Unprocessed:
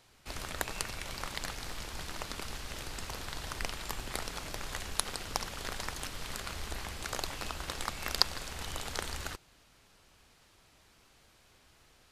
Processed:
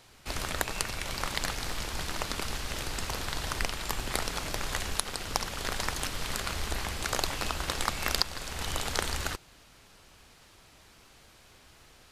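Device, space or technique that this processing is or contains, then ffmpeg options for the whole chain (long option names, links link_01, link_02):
clipper into limiter: -af "asoftclip=type=hard:threshold=-5.5dB,alimiter=limit=-13.5dB:level=0:latency=1:release=485,volume=6.5dB"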